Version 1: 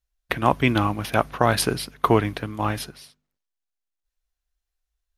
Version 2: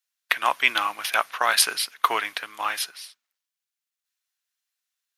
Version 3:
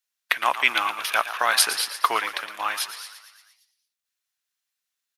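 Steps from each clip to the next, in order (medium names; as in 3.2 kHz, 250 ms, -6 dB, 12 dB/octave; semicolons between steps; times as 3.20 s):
high-pass 1.4 kHz 12 dB/octave; trim +6 dB
frequency-shifting echo 115 ms, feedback 61%, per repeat +63 Hz, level -12 dB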